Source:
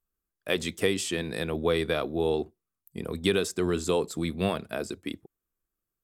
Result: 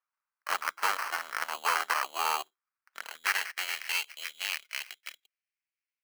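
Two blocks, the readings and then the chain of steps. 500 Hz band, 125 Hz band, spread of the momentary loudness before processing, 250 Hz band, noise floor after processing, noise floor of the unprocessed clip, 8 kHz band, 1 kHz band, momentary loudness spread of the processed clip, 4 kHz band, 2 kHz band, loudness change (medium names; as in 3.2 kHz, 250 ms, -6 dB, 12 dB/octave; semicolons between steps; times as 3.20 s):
-19.5 dB, under -40 dB, 13 LU, under -30 dB, under -85 dBFS, under -85 dBFS, -0.5 dB, +6.5 dB, 15 LU, -1.0 dB, +4.0 dB, -2.5 dB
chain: sample-rate reducer 3.6 kHz, jitter 0%; Chebyshev shaper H 6 -6 dB, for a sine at -11 dBFS; high-pass sweep 1.2 kHz -> 2.4 kHz, 2.58–3.99 s; trim -6 dB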